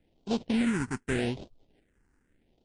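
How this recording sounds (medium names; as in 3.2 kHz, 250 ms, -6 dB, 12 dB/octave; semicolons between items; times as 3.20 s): aliases and images of a low sample rate 1.2 kHz, jitter 20%; phasing stages 4, 0.83 Hz, lowest notch 590–1800 Hz; MP3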